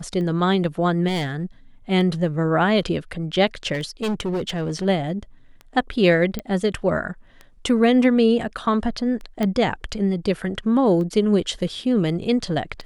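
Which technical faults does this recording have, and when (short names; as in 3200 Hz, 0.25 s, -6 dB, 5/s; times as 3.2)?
tick 33 1/3 rpm -23 dBFS
1.07–1.44 clipped -21 dBFS
3.73–4.86 clipped -20.5 dBFS
6.39 pop -13 dBFS
9.43 pop -11 dBFS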